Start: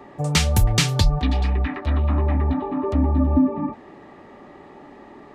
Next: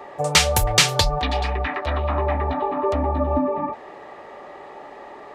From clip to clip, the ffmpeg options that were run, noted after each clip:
-af "lowshelf=f=370:t=q:w=1.5:g=-10.5,volume=5.5dB"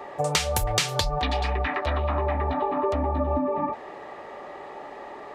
-af "acompressor=threshold=-21dB:ratio=6"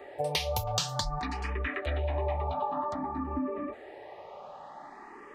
-filter_complex "[0:a]asplit=2[a][b];[b]afreqshift=0.53[c];[a][c]amix=inputs=2:normalize=1,volume=-4dB"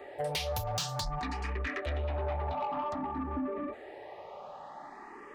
-af "asoftclip=type=tanh:threshold=-27.5dB"

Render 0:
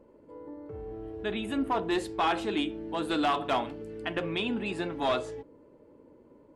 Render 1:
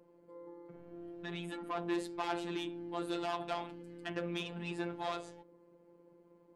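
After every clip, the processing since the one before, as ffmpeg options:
-af "asoftclip=type=tanh:threshold=-25.5dB,highpass=63,afftfilt=real='hypot(re,im)*cos(PI*b)':imag='0':win_size=1024:overlap=0.75,volume=-2.5dB"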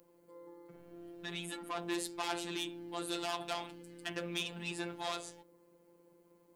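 -af "crystalizer=i=4.5:c=0,volume=-3dB"

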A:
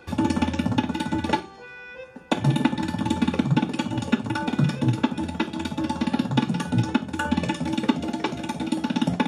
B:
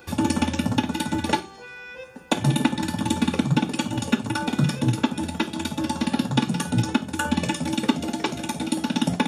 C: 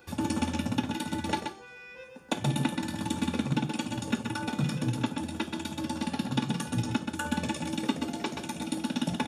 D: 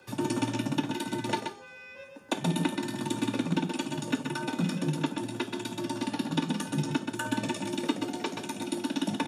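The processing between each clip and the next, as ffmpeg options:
-af "aemphasis=mode=production:type=50kf"
-af "aecho=1:1:128:0.501,volume=-8dB"
-af "afreqshift=31"

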